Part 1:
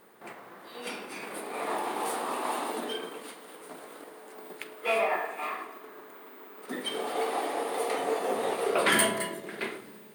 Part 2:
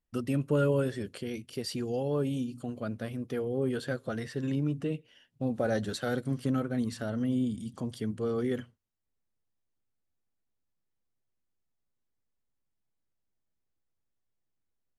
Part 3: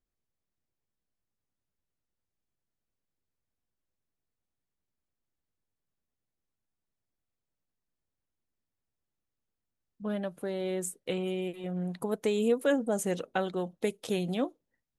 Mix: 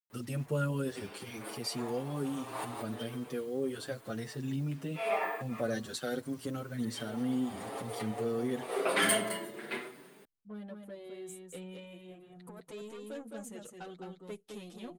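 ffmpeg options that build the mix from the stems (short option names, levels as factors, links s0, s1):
-filter_complex "[0:a]adelay=100,volume=0.891[s0];[1:a]highpass=79,highshelf=f=3800:g=8.5,acrusher=bits=8:mix=0:aa=0.000001,volume=0.75,asplit=2[s1][s2];[2:a]adynamicequalizer=threshold=0.00794:dfrequency=580:dqfactor=0.77:tfrequency=580:tqfactor=0.77:attack=5:release=100:ratio=0.375:range=2.5:mode=cutabove:tftype=bell,asoftclip=type=tanh:threshold=0.0447,adelay=450,volume=0.376,asplit=2[s3][s4];[s4]volume=0.596[s5];[s2]apad=whole_len=451827[s6];[s0][s6]sidechaincompress=threshold=0.00891:ratio=10:attack=5.4:release=208[s7];[s5]aecho=0:1:212:1[s8];[s7][s1][s3][s8]amix=inputs=4:normalize=0,asplit=2[s9][s10];[s10]adelay=7,afreqshift=0.76[s11];[s9][s11]amix=inputs=2:normalize=1"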